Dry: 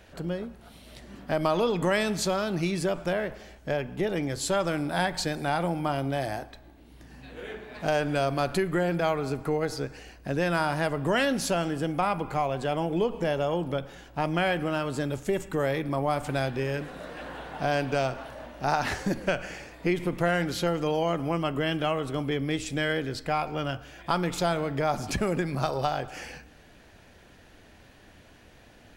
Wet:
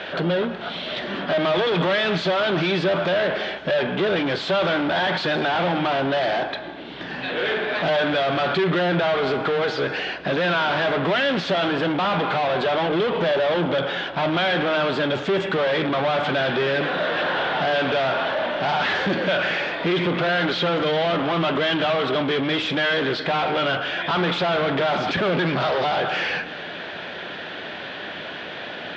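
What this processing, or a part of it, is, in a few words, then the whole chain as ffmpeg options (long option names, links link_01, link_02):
overdrive pedal into a guitar cabinet: -filter_complex "[0:a]asplit=2[link_01][link_02];[link_02]highpass=frequency=720:poles=1,volume=37dB,asoftclip=type=tanh:threshold=-10dB[link_03];[link_01][link_03]amix=inputs=2:normalize=0,lowpass=frequency=5800:poles=1,volume=-6dB,highpass=95,equalizer=frequency=170:width_type=q:width=4:gain=7,equalizer=frequency=380:width_type=q:width=4:gain=4,equalizer=frequency=600:width_type=q:width=4:gain=4,equalizer=frequency=1500:width_type=q:width=4:gain=4,equalizer=frequency=3400:width_type=q:width=4:gain=7,lowpass=frequency=4000:width=0.5412,lowpass=frequency=4000:width=1.3066,volume=-7dB"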